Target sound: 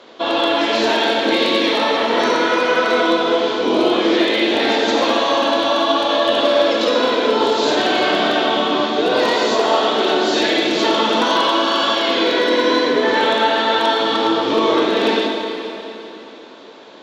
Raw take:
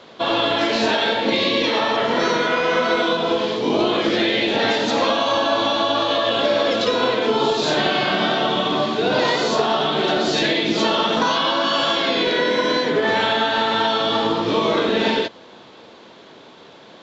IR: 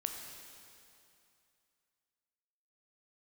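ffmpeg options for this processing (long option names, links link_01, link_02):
-filter_complex "[0:a]aeval=exprs='0.335*(abs(mod(val(0)/0.335+3,4)-2)-1)':channel_layout=same,lowshelf=frequency=210:width_type=q:width=1.5:gain=-8.5[link_01];[1:a]atrim=start_sample=2205,asetrate=34398,aresample=44100[link_02];[link_01][link_02]afir=irnorm=-1:irlink=0"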